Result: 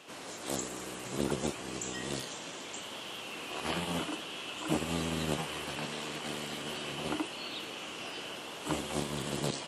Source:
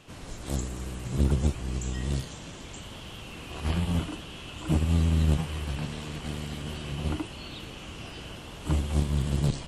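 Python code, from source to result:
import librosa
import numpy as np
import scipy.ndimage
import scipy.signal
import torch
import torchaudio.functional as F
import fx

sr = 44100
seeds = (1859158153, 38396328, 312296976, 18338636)

y = scipy.signal.sosfilt(scipy.signal.butter(2, 340.0, 'highpass', fs=sr, output='sos'), x)
y = y * 10.0 ** (2.5 / 20.0)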